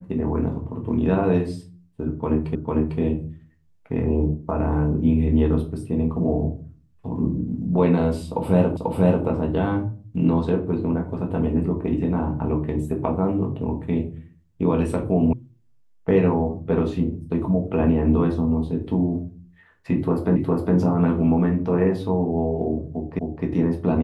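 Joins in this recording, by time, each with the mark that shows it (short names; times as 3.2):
2.55 repeat of the last 0.45 s
8.77 repeat of the last 0.49 s
15.33 sound cut off
20.36 repeat of the last 0.41 s
23.19 repeat of the last 0.26 s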